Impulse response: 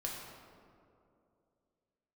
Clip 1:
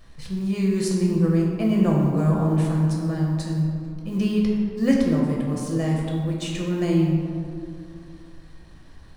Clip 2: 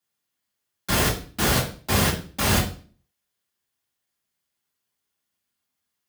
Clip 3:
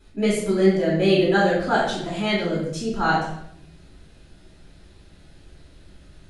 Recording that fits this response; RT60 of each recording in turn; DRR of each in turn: 1; 2.6, 0.40, 0.75 seconds; −3.0, −6.5, −7.5 decibels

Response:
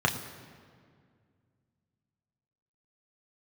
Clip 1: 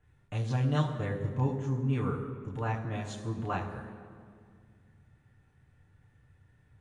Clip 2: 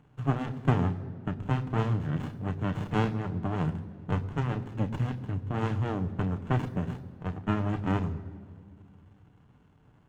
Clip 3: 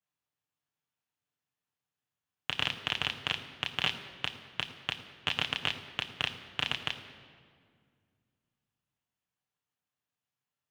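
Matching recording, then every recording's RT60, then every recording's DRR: 3; 2.1, 2.1, 2.1 seconds; −6.0, 8.0, 1.0 decibels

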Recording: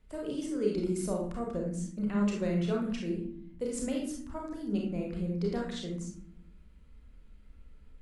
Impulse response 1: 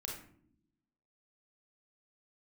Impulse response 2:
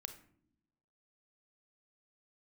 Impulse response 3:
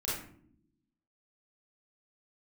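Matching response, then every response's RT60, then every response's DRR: 1; non-exponential decay, non-exponential decay, non-exponential decay; −1.5, 8.0, −8.0 decibels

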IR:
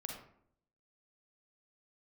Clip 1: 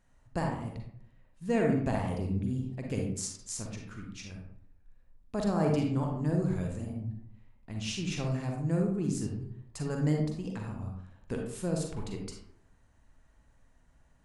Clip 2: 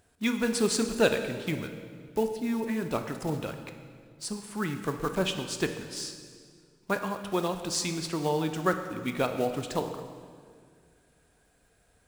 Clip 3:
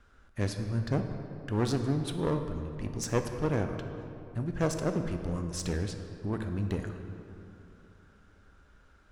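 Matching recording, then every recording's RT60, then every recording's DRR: 1; 0.65, 2.0, 3.0 seconds; 0.5, 6.5, 6.0 decibels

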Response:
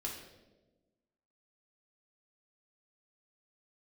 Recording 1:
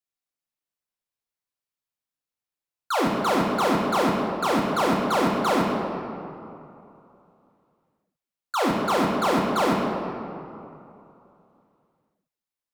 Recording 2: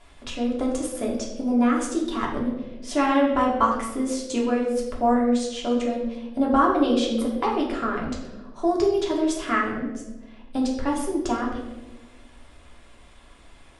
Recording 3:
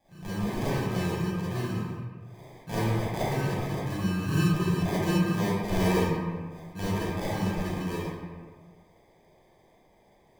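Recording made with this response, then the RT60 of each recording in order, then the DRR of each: 2; 2.9, 1.2, 1.6 seconds; −2.0, −3.0, −10.5 decibels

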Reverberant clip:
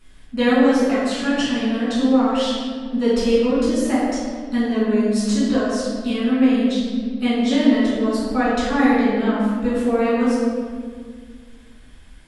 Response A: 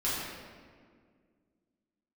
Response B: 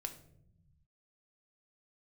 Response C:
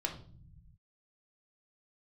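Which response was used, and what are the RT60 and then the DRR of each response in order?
A; 1.9, 0.70, 0.50 seconds; −9.5, 6.0, 2.0 decibels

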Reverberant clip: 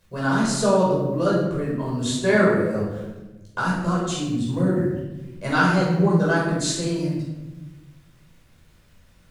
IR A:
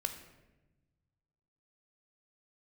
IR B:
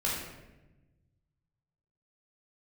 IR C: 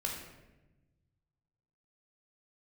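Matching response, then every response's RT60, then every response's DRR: B; 1.1, 1.0, 1.1 seconds; 6.5, −6.0, −1.0 decibels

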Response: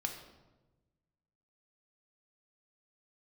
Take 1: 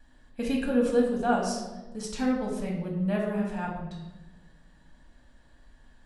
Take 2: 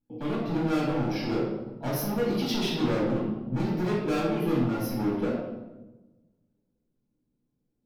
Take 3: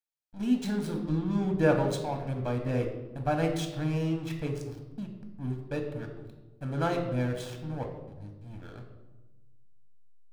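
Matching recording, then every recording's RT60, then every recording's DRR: 3; 1.1, 1.1, 1.1 seconds; −2.0, −7.0, 3.0 decibels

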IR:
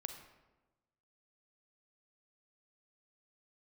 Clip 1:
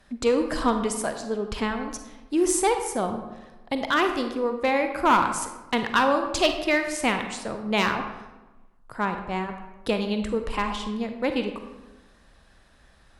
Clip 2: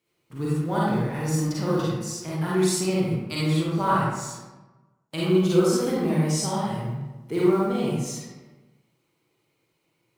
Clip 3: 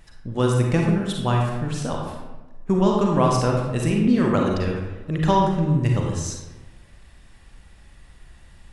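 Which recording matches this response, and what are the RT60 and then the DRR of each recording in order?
1; 1.1, 1.1, 1.1 seconds; 6.0, −7.0, −0.5 decibels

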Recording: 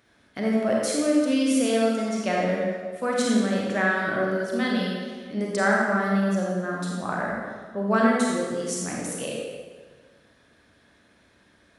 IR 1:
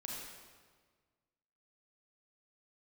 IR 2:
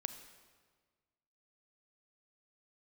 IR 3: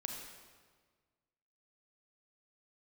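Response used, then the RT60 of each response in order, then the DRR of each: 1; 1.6, 1.5, 1.6 seconds; −3.0, 9.0, 1.5 decibels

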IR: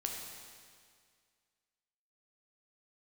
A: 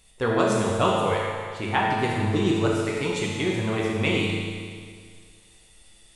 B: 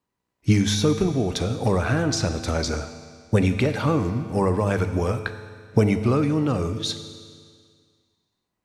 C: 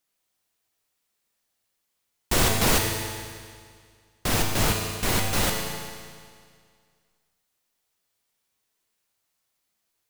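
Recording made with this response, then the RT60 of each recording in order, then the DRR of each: C; 2.0, 2.0, 2.0 seconds; −4.0, 9.0, 0.5 decibels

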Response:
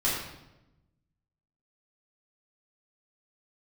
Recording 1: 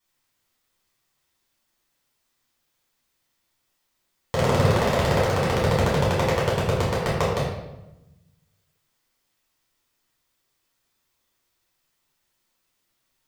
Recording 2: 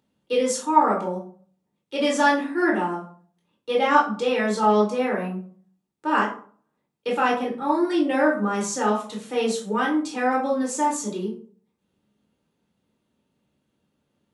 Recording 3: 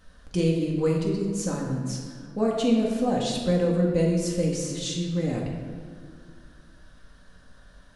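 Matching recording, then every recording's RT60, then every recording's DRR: 1; 0.95, 0.50, 2.1 seconds; −7.5, −3.5, −2.5 decibels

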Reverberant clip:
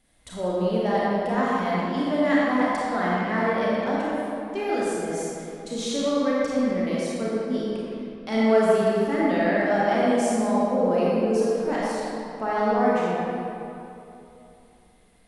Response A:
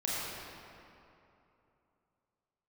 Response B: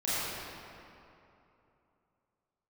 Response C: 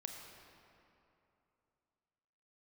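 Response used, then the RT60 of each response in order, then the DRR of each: A; 2.9, 2.9, 2.9 seconds; −7.0, −12.0, 2.5 decibels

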